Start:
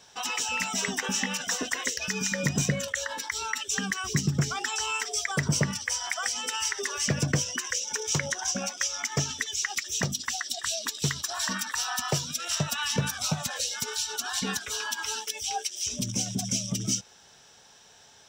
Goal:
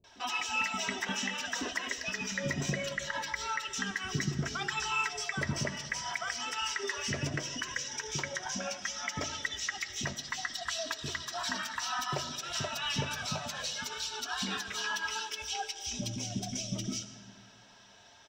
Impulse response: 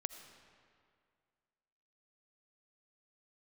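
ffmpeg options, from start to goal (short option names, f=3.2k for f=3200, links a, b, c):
-filter_complex "[0:a]aecho=1:1:3.1:0.49,alimiter=limit=-18.5dB:level=0:latency=1:release=177,flanger=delay=1.7:depth=8:regen=-47:speed=0.64:shape=triangular,acrossover=split=340[a][b];[b]adelay=40[c];[a][c]amix=inputs=2:normalize=0,asplit=2[d][e];[1:a]atrim=start_sample=2205,lowpass=5.2k[f];[e][f]afir=irnorm=-1:irlink=0,volume=9.5dB[g];[d][g]amix=inputs=2:normalize=0,volume=-8dB"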